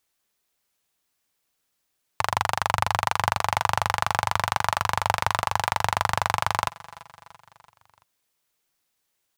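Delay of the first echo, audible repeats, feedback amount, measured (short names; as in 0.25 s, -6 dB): 0.337 s, 3, 54%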